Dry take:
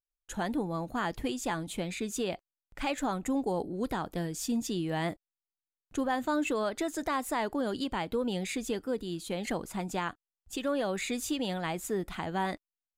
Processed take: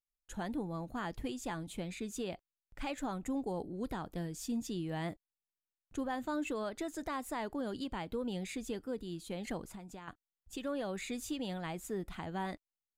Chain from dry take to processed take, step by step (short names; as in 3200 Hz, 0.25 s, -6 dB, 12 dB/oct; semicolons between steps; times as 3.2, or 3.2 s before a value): low shelf 190 Hz +6.5 dB; 9.67–10.08 compressor 12:1, threshold -37 dBFS, peak gain reduction 11 dB; gain -8 dB